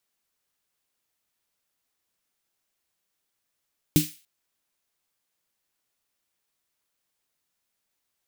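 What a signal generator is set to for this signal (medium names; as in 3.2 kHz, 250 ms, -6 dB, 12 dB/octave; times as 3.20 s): snare drum length 0.29 s, tones 160 Hz, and 300 Hz, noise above 2.2 kHz, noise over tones -8 dB, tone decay 0.19 s, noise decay 0.38 s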